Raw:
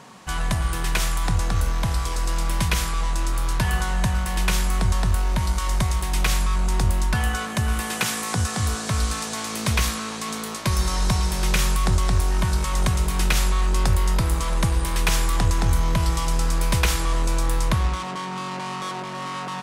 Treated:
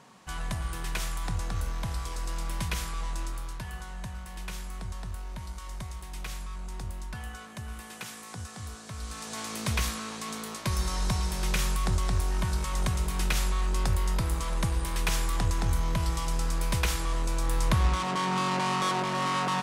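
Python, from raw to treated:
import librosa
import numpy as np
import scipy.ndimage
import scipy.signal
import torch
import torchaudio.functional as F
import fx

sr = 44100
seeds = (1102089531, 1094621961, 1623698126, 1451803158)

y = fx.gain(x, sr, db=fx.line((3.21, -9.5), (3.64, -16.5), (8.97, -16.5), (9.39, -7.0), (17.36, -7.0), (18.29, 2.5)))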